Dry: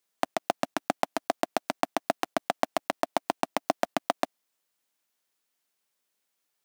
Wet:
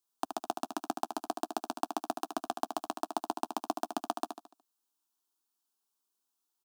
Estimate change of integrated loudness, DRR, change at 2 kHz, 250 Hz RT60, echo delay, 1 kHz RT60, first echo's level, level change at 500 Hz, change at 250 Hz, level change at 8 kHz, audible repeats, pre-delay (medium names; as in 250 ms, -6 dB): -6.0 dB, no reverb, -13.0 dB, no reverb, 73 ms, no reverb, -7.5 dB, -9.0 dB, -4.0 dB, -4.0 dB, 4, no reverb